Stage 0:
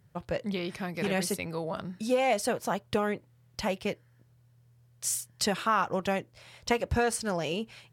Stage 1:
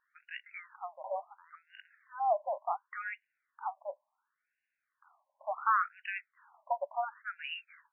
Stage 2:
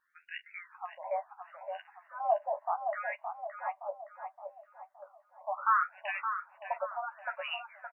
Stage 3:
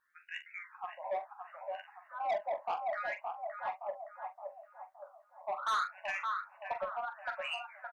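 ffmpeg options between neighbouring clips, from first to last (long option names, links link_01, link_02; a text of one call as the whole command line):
ffmpeg -i in.wav -af "afftfilt=real='re*between(b*sr/1024,760*pow(2100/760,0.5+0.5*sin(2*PI*0.7*pts/sr))/1.41,760*pow(2100/760,0.5+0.5*sin(2*PI*0.7*pts/sr))*1.41)':imag='im*between(b*sr/1024,760*pow(2100/760,0.5+0.5*sin(2*PI*0.7*pts/sr))/1.41,760*pow(2100/760,0.5+0.5*sin(2*PI*0.7*pts/sr))*1.41)':win_size=1024:overlap=0.75" out.wav
ffmpeg -i in.wav -filter_complex "[0:a]asplit=2[link_01][link_02];[link_02]adelay=12,volume=-4.5dB[link_03];[link_01][link_03]amix=inputs=2:normalize=0,asplit=2[link_04][link_05];[link_05]adelay=568,lowpass=frequency=1200:poles=1,volume=-5dB,asplit=2[link_06][link_07];[link_07]adelay=568,lowpass=frequency=1200:poles=1,volume=0.54,asplit=2[link_08][link_09];[link_09]adelay=568,lowpass=frequency=1200:poles=1,volume=0.54,asplit=2[link_10][link_11];[link_11]adelay=568,lowpass=frequency=1200:poles=1,volume=0.54,asplit=2[link_12][link_13];[link_13]adelay=568,lowpass=frequency=1200:poles=1,volume=0.54,asplit=2[link_14][link_15];[link_15]adelay=568,lowpass=frequency=1200:poles=1,volume=0.54,asplit=2[link_16][link_17];[link_17]adelay=568,lowpass=frequency=1200:poles=1,volume=0.54[link_18];[link_06][link_08][link_10][link_12][link_14][link_16][link_18]amix=inputs=7:normalize=0[link_19];[link_04][link_19]amix=inputs=2:normalize=0" out.wav
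ffmpeg -i in.wav -filter_complex "[0:a]asoftclip=type=tanh:threshold=-28.5dB,asplit=2[link_01][link_02];[link_02]adelay=43,volume=-10dB[link_03];[link_01][link_03]amix=inputs=2:normalize=0" out.wav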